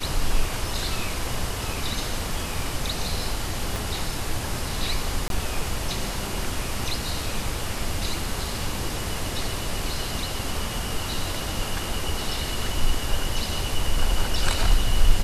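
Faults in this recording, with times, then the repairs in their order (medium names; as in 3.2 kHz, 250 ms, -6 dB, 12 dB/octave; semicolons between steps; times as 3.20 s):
3.76 s: pop
5.28–5.30 s: dropout 22 ms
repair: de-click; interpolate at 5.28 s, 22 ms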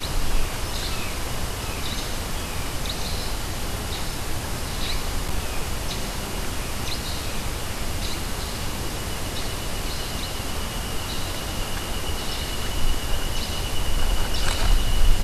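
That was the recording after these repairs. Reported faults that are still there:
3.76 s: pop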